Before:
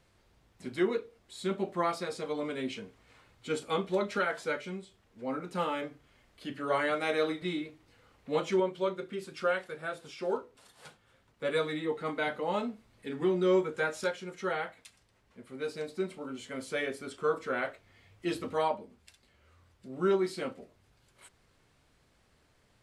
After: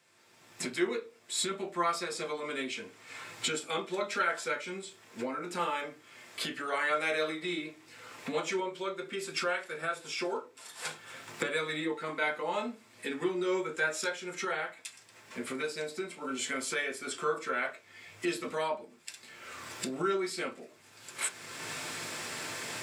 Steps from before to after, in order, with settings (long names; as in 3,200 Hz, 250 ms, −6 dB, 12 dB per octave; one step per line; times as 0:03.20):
camcorder AGC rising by 27 dB per second
Bessel high-pass filter 270 Hz, order 2
convolution reverb RT60 0.20 s, pre-delay 3 ms, DRR 5 dB
level +1.5 dB